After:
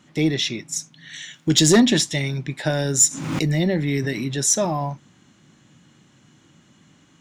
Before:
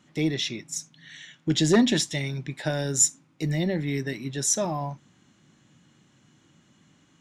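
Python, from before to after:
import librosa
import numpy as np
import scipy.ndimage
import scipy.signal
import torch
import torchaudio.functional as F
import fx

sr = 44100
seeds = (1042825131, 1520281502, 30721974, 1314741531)

y = fx.high_shelf(x, sr, hz=4900.0, db=11.5, at=(1.13, 1.8))
y = 10.0 ** (-9.5 / 20.0) * np.tanh(y / 10.0 ** (-9.5 / 20.0))
y = fx.pre_swell(y, sr, db_per_s=45.0, at=(3.02, 4.37))
y = y * librosa.db_to_amplitude(5.5)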